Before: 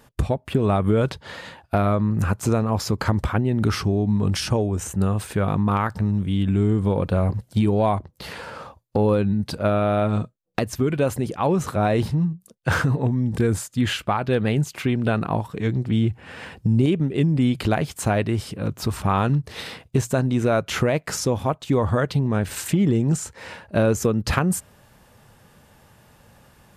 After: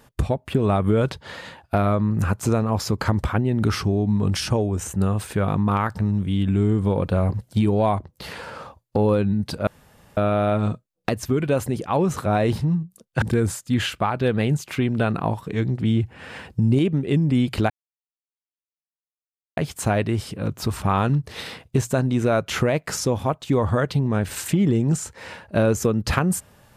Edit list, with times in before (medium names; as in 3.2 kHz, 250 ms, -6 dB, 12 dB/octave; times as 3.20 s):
9.67 s: insert room tone 0.50 s
12.72–13.29 s: delete
17.77 s: insert silence 1.87 s